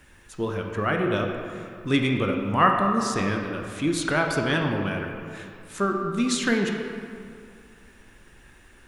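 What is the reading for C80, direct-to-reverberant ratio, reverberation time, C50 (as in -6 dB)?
4.5 dB, 1.5 dB, 2.4 s, 3.5 dB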